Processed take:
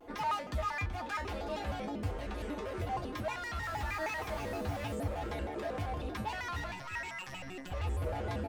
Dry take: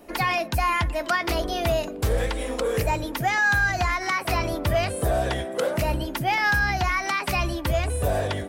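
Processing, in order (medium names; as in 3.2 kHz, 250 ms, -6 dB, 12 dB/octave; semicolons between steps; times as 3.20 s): low-pass 2 kHz 6 dB/octave; peak limiter -25 dBFS, peak gain reduction 10 dB; 3.62–4.94 s: added noise pink -49 dBFS; 6.71–7.72 s: robot voice 160 Hz; wavefolder -27.5 dBFS; feedback comb 83 Hz, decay 0.24 s, harmonics odd, mix 90%; delay 377 ms -10.5 dB; vibrato with a chosen wave square 6.4 Hz, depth 250 cents; trim +5.5 dB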